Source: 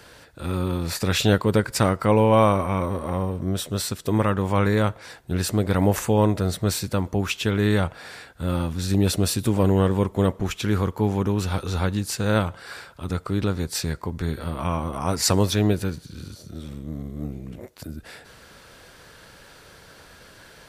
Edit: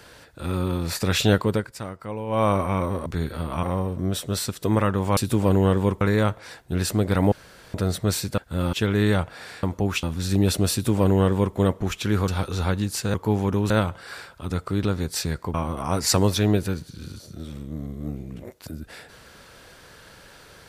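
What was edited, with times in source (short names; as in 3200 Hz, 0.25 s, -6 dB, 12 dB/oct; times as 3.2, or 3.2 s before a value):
1.42–2.56 dip -14 dB, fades 0.30 s
5.91–6.33 room tone
6.97–7.37 swap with 8.27–8.62
9.31–10.15 copy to 4.6
10.87–11.43 move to 12.29
14.13–14.7 move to 3.06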